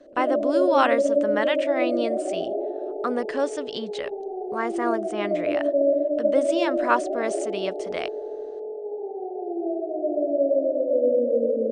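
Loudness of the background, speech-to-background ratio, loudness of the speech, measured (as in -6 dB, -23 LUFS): -25.5 LUFS, -2.5 dB, -28.0 LUFS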